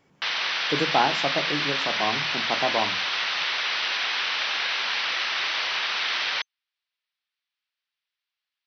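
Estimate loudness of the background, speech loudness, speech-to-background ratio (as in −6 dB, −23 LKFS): −24.5 LKFS, −28.5 LKFS, −4.0 dB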